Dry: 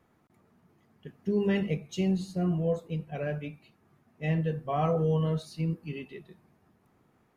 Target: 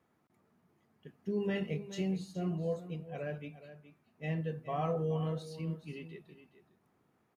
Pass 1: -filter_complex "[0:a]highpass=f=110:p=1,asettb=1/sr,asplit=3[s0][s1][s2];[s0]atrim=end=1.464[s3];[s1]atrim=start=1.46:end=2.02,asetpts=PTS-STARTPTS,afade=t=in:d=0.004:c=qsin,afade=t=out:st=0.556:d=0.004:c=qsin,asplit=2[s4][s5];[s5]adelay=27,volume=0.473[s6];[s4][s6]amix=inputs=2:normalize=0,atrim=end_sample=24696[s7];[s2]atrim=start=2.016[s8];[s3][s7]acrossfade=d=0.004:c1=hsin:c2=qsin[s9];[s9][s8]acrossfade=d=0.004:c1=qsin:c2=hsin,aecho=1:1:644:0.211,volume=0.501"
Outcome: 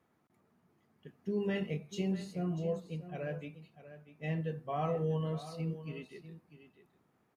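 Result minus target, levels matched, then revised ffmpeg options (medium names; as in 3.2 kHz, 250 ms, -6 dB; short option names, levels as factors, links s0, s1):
echo 224 ms late
-filter_complex "[0:a]highpass=f=110:p=1,asettb=1/sr,asplit=3[s0][s1][s2];[s0]atrim=end=1.464[s3];[s1]atrim=start=1.46:end=2.02,asetpts=PTS-STARTPTS,afade=t=in:d=0.004:c=qsin,afade=t=out:st=0.556:d=0.004:c=qsin,asplit=2[s4][s5];[s5]adelay=27,volume=0.473[s6];[s4][s6]amix=inputs=2:normalize=0,atrim=end_sample=24696[s7];[s2]atrim=start=2.016[s8];[s3][s7]acrossfade=d=0.004:c1=hsin:c2=qsin[s9];[s9][s8]acrossfade=d=0.004:c1=qsin:c2=hsin,aecho=1:1:420:0.211,volume=0.501"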